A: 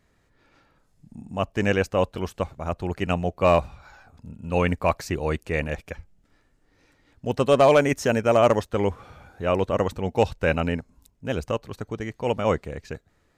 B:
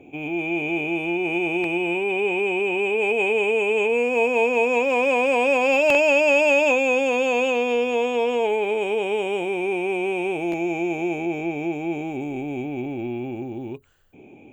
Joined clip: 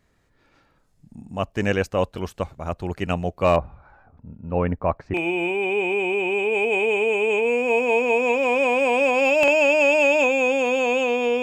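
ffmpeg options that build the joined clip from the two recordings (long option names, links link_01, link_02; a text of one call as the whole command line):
ffmpeg -i cue0.wav -i cue1.wav -filter_complex "[0:a]asettb=1/sr,asplit=3[link_01][link_02][link_03];[link_01]atrim=end=3.564[link_04];[link_02]atrim=start=3.56:end=5.14,asetpts=PTS-STARTPTS,afade=type=in:duration=0.004:curve=qsin,afade=type=out:start_time=1.576:duration=0.004:curve=qsin,lowpass=1300[link_05];[link_03]atrim=start=5.136[link_06];[link_04][link_05]acrossfade=duration=0.004:curve1=hsin:curve2=qsin[link_07];[link_07][link_06]acrossfade=duration=0.004:curve1=qsin:curve2=hsin,apad=whole_dur=11.42,atrim=end=11.42,atrim=end=5.142[link_08];[1:a]atrim=start=1.608:end=7.89[link_09];[link_08][link_09]acrossfade=duration=0.004:curve1=hsin:curve2=hsin" out.wav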